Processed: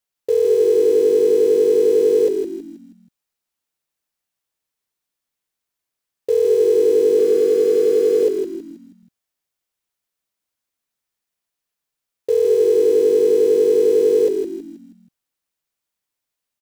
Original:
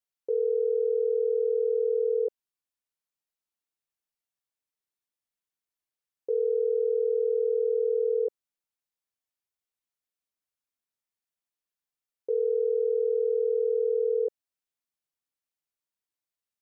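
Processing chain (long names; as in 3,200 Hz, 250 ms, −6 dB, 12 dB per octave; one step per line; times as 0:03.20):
0:07.19–0:08.23: high-pass filter 310 Hz 12 dB per octave
in parallel at −9 dB: bit reduction 6 bits
on the sum: echo with shifted repeats 160 ms, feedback 42%, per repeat −51 Hz, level −5.5 dB
level +7.5 dB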